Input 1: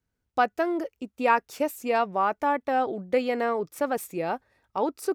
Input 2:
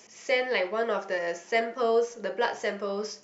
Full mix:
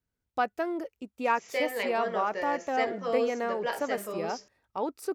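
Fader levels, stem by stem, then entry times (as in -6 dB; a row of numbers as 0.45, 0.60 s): -5.0, -5.0 dB; 0.00, 1.25 s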